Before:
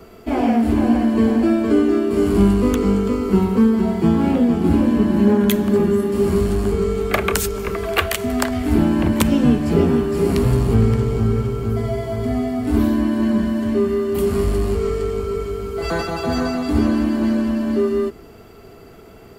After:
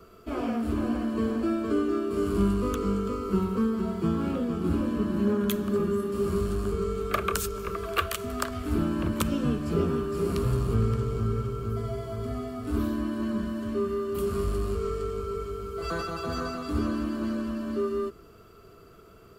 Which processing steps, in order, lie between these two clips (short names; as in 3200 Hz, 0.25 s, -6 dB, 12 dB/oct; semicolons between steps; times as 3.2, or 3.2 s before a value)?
thirty-one-band EQ 250 Hz -6 dB, 800 Hz -11 dB, 1250 Hz +9 dB, 2000 Hz -7 dB; gain -9 dB